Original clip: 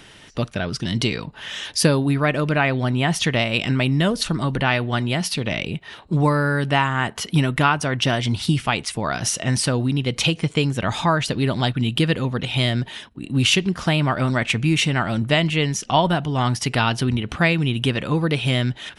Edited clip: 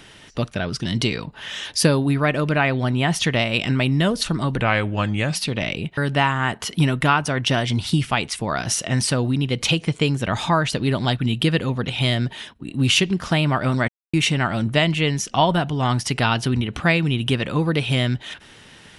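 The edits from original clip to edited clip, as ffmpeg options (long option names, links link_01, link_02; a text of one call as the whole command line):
ffmpeg -i in.wav -filter_complex "[0:a]asplit=6[link_01][link_02][link_03][link_04][link_05][link_06];[link_01]atrim=end=4.614[link_07];[link_02]atrim=start=4.61:end=5.25,asetpts=PTS-STARTPTS,asetrate=37926,aresample=44100[link_08];[link_03]atrim=start=5.246:end=5.872[link_09];[link_04]atrim=start=6.528:end=14.44,asetpts=PTS-STARTPTS,afade=type=out:start_time=7.908:duration=0.004:curve=hsin[link_10];[link_05]atrim=start=14.44:end=14.69,asetpts=PTS-STARTPTS,volume=0[link_11];[link_06]atrim=start=14.69,asetpts=PTS-STARTPTS,afade=type=in:duration=0.004:curve=hsin[link_12];[link_07][link_08]acrossfade=duration=0.004:curve1=hsin:curve2=hsin[link_13];[link_13][link_09]acrossfade=duration=0.004:curve1=hsin:curve2=hsin[link_14];[link_10][link_11][link_12]concat=n=3:v=0:a=1[link_15];[link_14][link_15]acrossfade=duration=0.004:curve1=hsin:curve2=hsin" out.wav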